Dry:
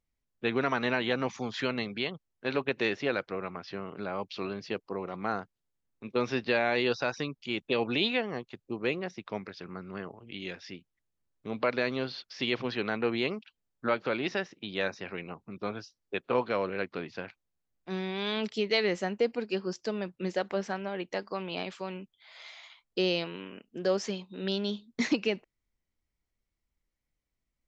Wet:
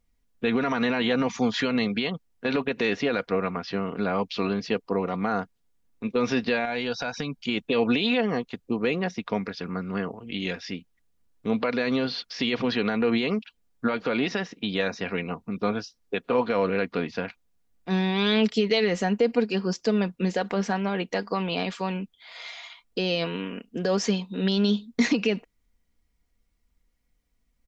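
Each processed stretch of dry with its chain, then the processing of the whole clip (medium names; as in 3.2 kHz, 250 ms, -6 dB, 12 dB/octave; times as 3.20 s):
6.65–7.45 s: comb 1.3 ms, depth 38% + compression 3:1, threshold -36 dBFS
whole clip: bass shelf 240 Hz +4.5 dB; peak limiter -22 dBFS; comb 4.2 ms, depth 45%; trim +7.5 dB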